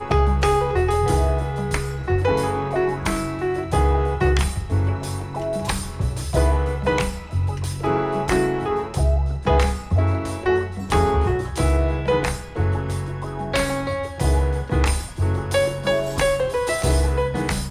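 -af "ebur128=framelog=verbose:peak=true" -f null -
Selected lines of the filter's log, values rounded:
Integrated loudness:
  I:         -22.0 LUFS
  Threshold: -32.0 LUFS
Loudness range:
  LRA:         2.1 LU
  Threshold: -42.2 LUFS
  LRA low:   -23.2 LUFS
  LRA high:  -21.2 LUFS
True peak:
  Peak:       -6.3 dBFS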